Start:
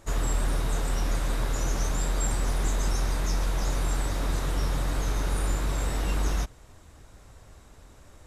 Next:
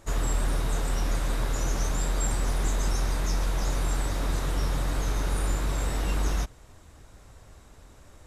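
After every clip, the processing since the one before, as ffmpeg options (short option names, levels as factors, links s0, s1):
-af anull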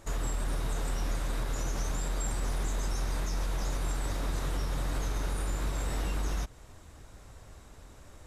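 -af "alimiter=limit=0.0668:level=0:latency=1:release=178"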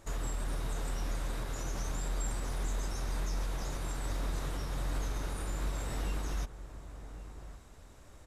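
-filter_complex "[0:a]asplit=2[s0][s1];[s1]adelay=1108,volume=0.251,highshelf=f=4000:g=-24.9[s2];[s0][s2]amix=inputs=2:normalize=0,volume=0.668"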